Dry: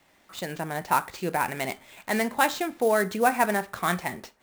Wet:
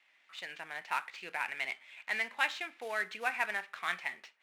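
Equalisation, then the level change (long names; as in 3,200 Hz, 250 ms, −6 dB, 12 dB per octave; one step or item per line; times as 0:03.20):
resonant band-pass 2,400 Hz, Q 2
0.0 dB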